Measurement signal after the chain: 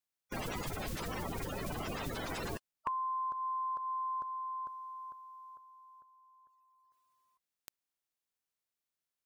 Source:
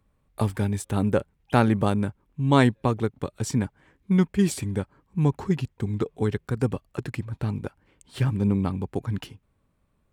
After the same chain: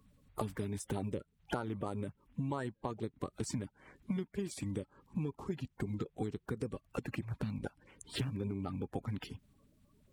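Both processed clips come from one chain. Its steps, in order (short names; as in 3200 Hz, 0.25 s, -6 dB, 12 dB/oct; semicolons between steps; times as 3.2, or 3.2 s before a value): bin magnitudes rounded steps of 30 dB; compressor 16:1, threshold -36 dBFS; gain +2 dB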